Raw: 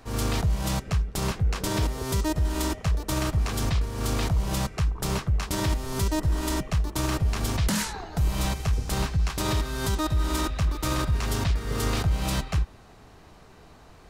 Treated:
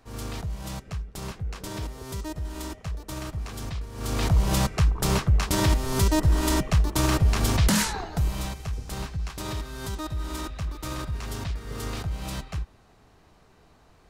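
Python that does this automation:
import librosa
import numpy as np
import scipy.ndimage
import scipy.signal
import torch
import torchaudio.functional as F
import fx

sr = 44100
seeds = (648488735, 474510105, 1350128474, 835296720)

y = fx.gain(x, sr, db=fx.line((3.88, -8.0), (4.34, 4.0), (8.0, 4.0), (8.52, -6.5)))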